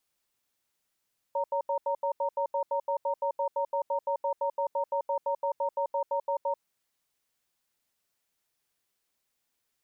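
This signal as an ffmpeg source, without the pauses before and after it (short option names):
-f lavfi -i "aevalsrc='0.0376*(sin(2*PI*561*t)+sin(2*PI*926*t))*clip(min(mod(t,0.17),0.09-mod(t,0.17))/0.005,0,1)':d=5.24:s=44100"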